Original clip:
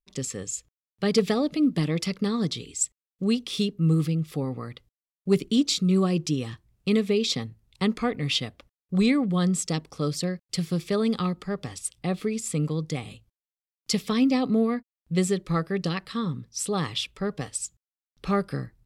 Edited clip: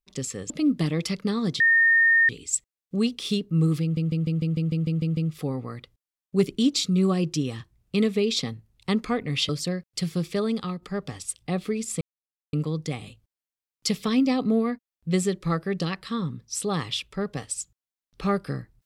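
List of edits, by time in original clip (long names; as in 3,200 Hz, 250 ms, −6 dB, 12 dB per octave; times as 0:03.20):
0:00.50–0:01.47: remove
0:02.57: insert tone 1,830 Hz −15 dBFS 0.69 s
0:04.10: stutter 0.15 s, 10 plays
0:08.42–0:10.05: remove
0:10.85–0:11.38: fade out, to −6.5 dB
0:12.57: splice in silence 0.52 s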